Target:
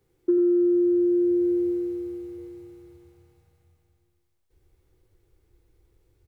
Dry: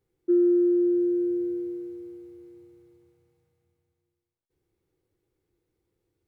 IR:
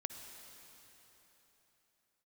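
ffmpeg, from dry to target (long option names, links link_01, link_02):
-filter_complex "[0:a]asubboost=boost=7.5:cutoff=69,acrossover=split=150[link_01][link_02];[link_02]acompressor=threshold=-29dB:ratio=6[link_03];[link_01][link_03]amix=inputs=2:normalize=0,asplit=2[link_04][link_05];[link_05]adelay=93.29,volume=-7dB,highshelf=frequency=4000:gain=-2.1[link_06];[link_04][link_06]amix=inputs=2:normalize=0,volume=8.5dB"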